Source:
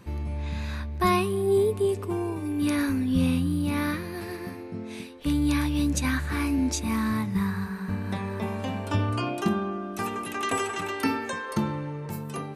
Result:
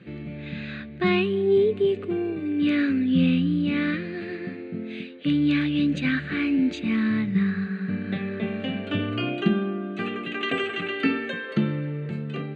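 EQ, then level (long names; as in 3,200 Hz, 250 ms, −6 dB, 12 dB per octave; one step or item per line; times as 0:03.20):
dynamic equaliser 3,000 Hz, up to +5 dB, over −54 dBFS, Q 6.1
elliptic band-pass filter 140–4,700 Hz, stop band 50 dB
phaser with its sweep stopped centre 2,300 Hz, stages 4
+5.5 dB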